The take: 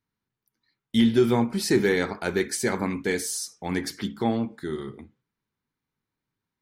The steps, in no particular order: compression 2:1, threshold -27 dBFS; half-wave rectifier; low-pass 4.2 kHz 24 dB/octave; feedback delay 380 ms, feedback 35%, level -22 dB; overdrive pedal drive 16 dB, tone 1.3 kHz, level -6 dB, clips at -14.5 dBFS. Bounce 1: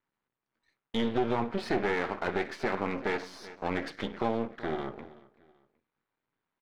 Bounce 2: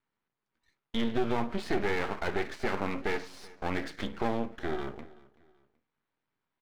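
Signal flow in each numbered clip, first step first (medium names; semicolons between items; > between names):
feedback delay > compression > low-pass > half-wave rectifier > overdrive pedal; compression > overdrive pedal > low-pass > half-wave rectifier > feedback delay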